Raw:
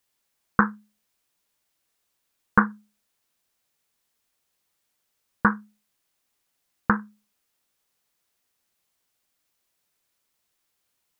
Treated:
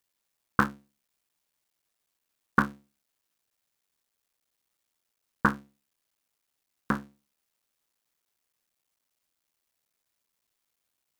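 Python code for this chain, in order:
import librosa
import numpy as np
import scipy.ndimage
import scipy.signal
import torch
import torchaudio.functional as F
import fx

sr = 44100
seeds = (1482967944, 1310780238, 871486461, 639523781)

y = fx.cycle_switch(x, sr, every=3, mode='muted')
y = F.gain(torch.from_numpy(y), -3.0).numpy()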